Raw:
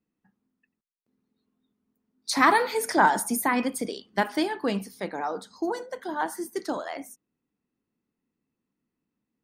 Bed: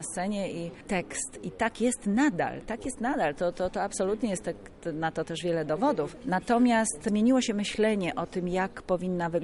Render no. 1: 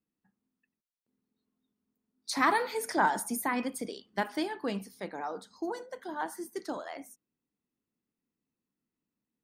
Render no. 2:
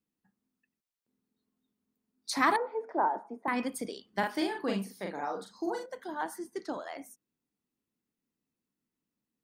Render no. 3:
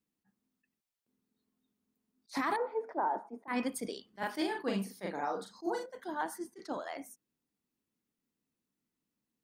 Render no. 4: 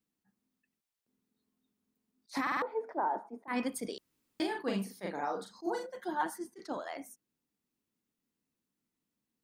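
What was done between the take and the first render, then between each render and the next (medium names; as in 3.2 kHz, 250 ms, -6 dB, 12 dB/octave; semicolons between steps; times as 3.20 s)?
trim -6.5 dB
2.56–3.48 s: Butterworth band-pass 580 Hz, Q 0.83; 4.19–5.86 s: doubling 41 ms -3 dB; 6.38–6.82 s: distance through air 57 m
peak limiter -23 dBFS, peak gain reduction 10.5 dB; attacks held to a fixed rise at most 400 dB/s
2.42 s: stutter in place 0.05 s, 4 plays; 3.98–4.40 s: room tone; 5.83–6.30 s: comb 5.6 ms, depth 84%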